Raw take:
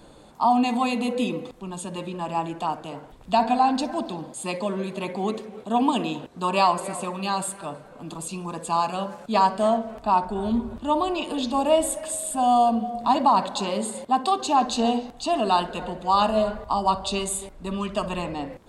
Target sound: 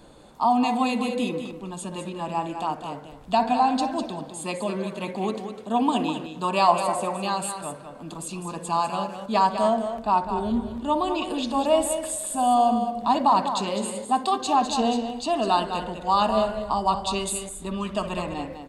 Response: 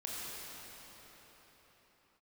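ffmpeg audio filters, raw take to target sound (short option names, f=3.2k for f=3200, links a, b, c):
-filter_complex "[0:a]asettb=1/sr,asplit=3[a][b][c];[a]atrim=end=6.684[d];[b]atrim=start=6.68:end=7.27,asetpts=PTS-STARTPTS,afade=t=in:d=0.004:c=qsin,afade=t=out:st=0.586:d=0.004:c=qsin,equalizer=f=710:t=o:w=0.95:g=7.5[e];[c]atrim=start=7.266[f];[d][e]acrossfade=d=0.004:c1=hsin:c2=qsin[g];[g][f]acrossfade=d=0.004:c1=qsin:c2=hsin,asplit=2[h][i];[i]aecho=0:1:203:0.376[j];[h][j]amix=inputs=2:normalize=0,volume=-1dB"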